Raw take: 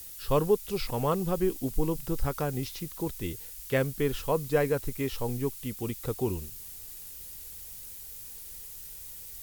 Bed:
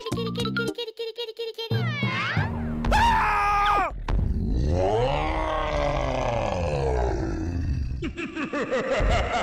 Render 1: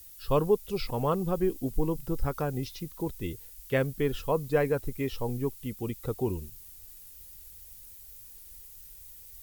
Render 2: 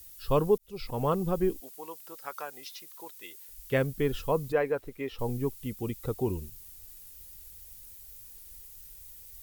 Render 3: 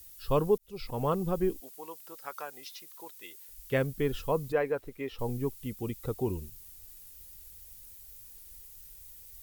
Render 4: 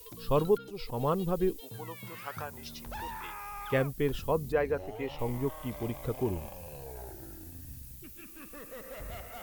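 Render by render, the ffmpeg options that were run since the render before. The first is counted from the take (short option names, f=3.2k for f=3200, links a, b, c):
-af "afftdn=nr=8:nf=-44"
-filter_complex "[0:a]asettb=1/sr,asplit=3[a][b][c];[a]atrim=end=1.604[d];[b]atrim=start=1.6:end=3.49,asetpts=PTS-STARTPTS,afade=t=in:d=0.004:c=qsin,afade=t=out:st=1.886:d=0.004:c=qsin,highpass=910[e];[c]atrim=start=3.486[f];[d][e]acrossfade=d=0.004:c1=hsin:c2=qsin[g];[g][f]acrossfade=d=0.004:c1=qsin:c2=hsin,asettb=1/sr,asplit=3[h][i][j];[h]atrim=end=4.524[k];[i]atrim=start=4.52:end=5.19,asetpts=PTS-STARTPTS,afade=t=in:d=0.004:c=qsin,afade=t=out:st=0.666:d=0.004:c=qsin,bass=f=250:g=-13,treble=f=4k:g=-11[l];[j]atrim=start=5.186[m];[k][l]acrossfade=d=0.004:c1=hsin:c2=qsin[n];[n][m]acrossfade=d=0.004:c1=qsin:c2=hsin,asplit=2[o][p];[o]atrim=end=0.58,asetpts=PTS-STARTPTS,afade=t=out:st=0.576:d=0.004:c=hsin[q];[p]atrim=start=0.58,asetpts=PTS-STARTPTS,afade=t=in:d=0.47[r];[q][r]concat=n=2:v=0:a=1"
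-af "volume=-1.5dB"
-filter_complex "[1:a]volume=-20.5dB[a];[0:a][a]amix=inputs=2:normalize=0"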